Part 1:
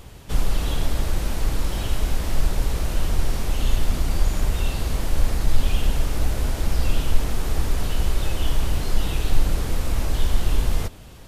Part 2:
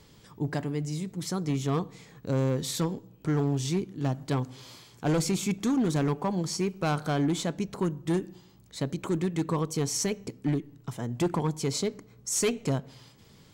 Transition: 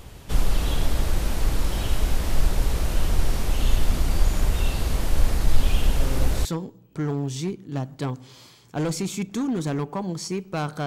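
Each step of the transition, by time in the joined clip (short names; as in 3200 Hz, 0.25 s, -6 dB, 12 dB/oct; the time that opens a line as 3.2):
part 1
5.55 add part 2 from 1.84 s 0.90 s -7 dB
6.45 switch to part 2 from 2.74 s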